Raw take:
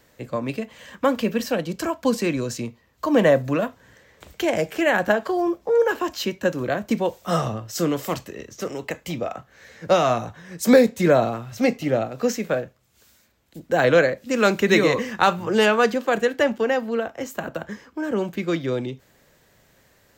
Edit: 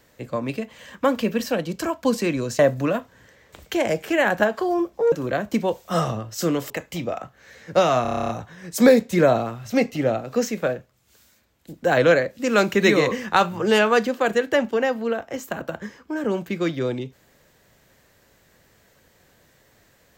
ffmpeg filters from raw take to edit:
-filter_complex "[0:a]asplit=13[a][b][c][d][e][f][g][h][i][j][k][l][m];[a]atrim=end=2.592[n];[b]atrim=start=3.268:end=5.802[o];[c]atrim=start=6.488:end=8.072[p];[d]atrim=start=8.838:end=10.192[q];[e]atrim=start=10.158:end=10.192[r];[f]atrim=start=10.158:end=10.192[s];[g]atrim=start=10.158:end=10.192[t];[h]atrim=start=10.158:end=10.192[u];[i]atrim=start=10.158:end=10.192[v];[j]atrim=start=10.158:end=10.192[w];[k]atrim=start=10.158:end=10.192[x];[l]atrim=start=10.158:end=10.192[y];[m]atrim=start=10.158[z];[n][o]acrossfade=d=0.004:c1=hsin:c2=hsin[aa];[aa][p]acrossfade=d=0.004:c1=hsin:c2=hsin[ab];[ab][q]acrossfade=d=0.004:c1=hsin:c2=hsin[ac];[ac][r]acrossfade=d=0.004:c1=hsin:c2=hsin[ad];[ad][s]acrossfade=d=0.004:c1=hsin:c2=hsin[ae];[ae][t]acrossfade=d=0.004:c1=hsin:c2=hsin[af];[af][u]acrossfade=d=0.004:c1=hsin:c2=hsin[ag];[ag][v]acrossfade=d=0.004:c1=hsin:c2=hsin[ah];[ah][w]acrossfade=d=0.004:c1=hsin:c2=hsin[ai];[ai][x]acrossfade=d=0.004:c1=hsin:c2=hsin[aj];[aj][y]acrossfade=d=0.004:c1=hsin:c2=hsin[ak];[ak][z]acrossfade=d=0.004:c1=hsin:c2=hsin"

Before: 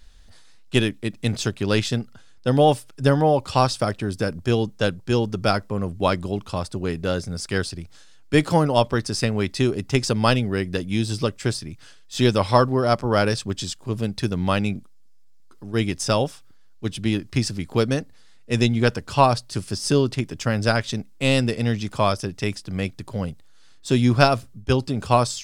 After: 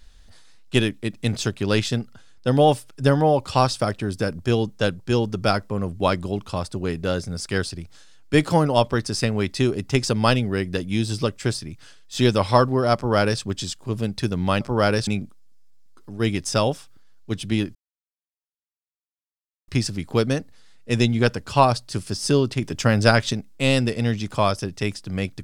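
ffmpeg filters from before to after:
-filter_complex "[0:a]asplit=6[a][b][c][d][e][f];[a]atrim=end=14.612[g];[b]atrim=start=12.948:end=13.412[h];[c]atrim=start=14.608:end=17.29,asetpts=PTS-STARTPTS,afade=t=out:st=2.678:d=0.004:c=hsin,apad=pad_dur=1.93[i];[d]atrim=start=17.29:end=20.232,asetpts=PTS-STARTPTS,afade=t=in:d=0.004:c=hsin[j];[e]atrim=start=20.228:end=20.942,asetpts=PTS-STARTPTS,volume=4dB[k];[f]atrim=start=20.938[l];[g][h]acrossfade=d=0.004:c1=hsin:c2=hsin[m];[i][j]concat=n=2:v=0:a=1[n];[m][n]acrossfade=d=0.004:c1=hsin:c2=hsin[o];[o][k]acrossfade=d=0.004:c1=hsin:c2=hsin[p];[p][l]acrossfade=d=0.004:c1=hsin:c2=hsin"

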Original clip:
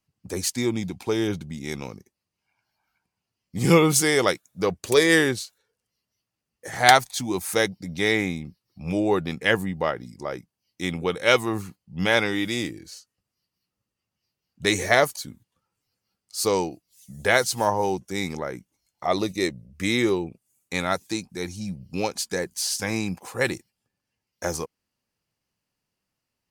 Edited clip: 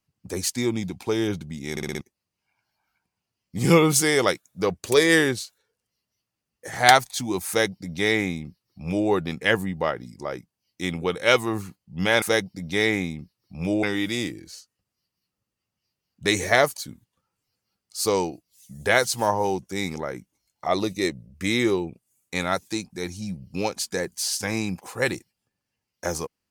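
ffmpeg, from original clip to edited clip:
-filter_complex "[0:a]asplit=8[a][b][c][d][e][f][g][h];[a]atrim=end=1.772[i];[b]atrim=start=1.708:end=1.772[j];[c]atrim=start=1.708:end=1.772[k];[d]atrim=start=1.708:end=1.772[l];[e]atrim=start=1.708:end=1.772[m];[f]atrim=start=2.008:end=12.222[n];[g]atrim=start=7.478:end=9.092[o];[h]atrim=start=12.218[p];[i][j]acrossfade=d=0.004:c1=hsin:c2=hsin[q];[q][k]acrossfade=d=0.004:c1=hsin:c2=hsin[r];[r][l]acrossfade=d=0.004:c1=hsin:c2=hsin[s];[s][m]acrossfade=d=0.004:c1=hsin:c2=hsin[t];[t][n]acrossfade=d=0.004:c1=hsin:c2=hsin[u];[u][o]acrossfade=d=0.004:c1=hsin:c2=hsin[v];[v][p]acrossfade=d=0.004:c1=hsin:c2=hsin"

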